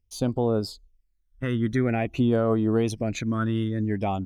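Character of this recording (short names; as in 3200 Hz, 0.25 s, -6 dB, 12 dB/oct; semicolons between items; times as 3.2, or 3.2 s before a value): phasing stages 12, 0.5 Hz, lowest notch 740–2200 Hz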